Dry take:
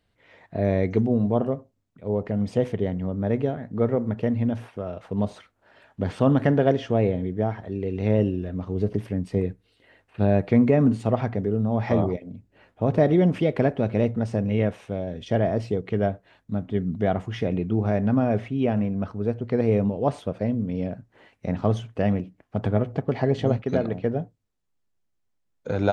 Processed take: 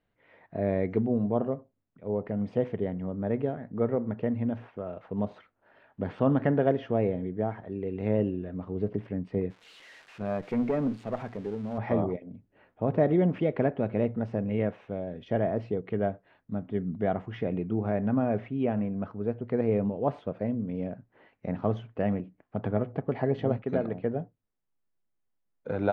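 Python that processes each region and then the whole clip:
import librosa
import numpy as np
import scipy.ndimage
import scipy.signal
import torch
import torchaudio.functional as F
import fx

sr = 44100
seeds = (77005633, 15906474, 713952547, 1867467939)

y = fx.chain(x, sr, fx.crossing_spikes(level_db=-24.0),
    fx.low_shelf(hz=77.0, db=-11.5),
    fx.tube_stage(drive_db=12.0, bias=0.6), at=(9.5, 11.78))
y = scipy.signal.sosfilt(scipy.signal.butter(2, 2300.0, 'lowpass', fs=sr, output='sos'), y)
y = fx.peak_eq(y, sr, hz=66.0, db=-9.5, octaves=1.2)
y = y * librosa.db_to_amplitude(-4.0)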